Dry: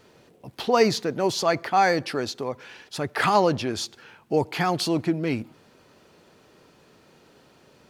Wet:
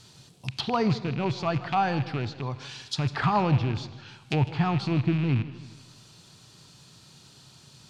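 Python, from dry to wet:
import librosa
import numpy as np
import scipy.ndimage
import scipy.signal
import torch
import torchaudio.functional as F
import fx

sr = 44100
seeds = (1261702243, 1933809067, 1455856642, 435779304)

y = fx.rattle_buzz(x, sr, strikes_db=-35.0, level_db=-18.0)
y = fx.graphic_eq(y, sr, hz=(125, 250, 500, 2000, 4000, 8000), db=(11, -4, -12, -6, 9, 10))
y = fx.env_lowpass_down(y, sr, base_hz=1300.0, full_db=-23.0)
y = fx.rev_schroeder(y, sr, rt60_s=1.3, comb_ms=30, drr_db=15.5)
y = fx.echo_warbled(y, sr, ms=155, feedback_pct=44, rate_hz=2.8, cents=151, wet_db=-17)
y = y * 10.0 ** (1.0 / 20.0)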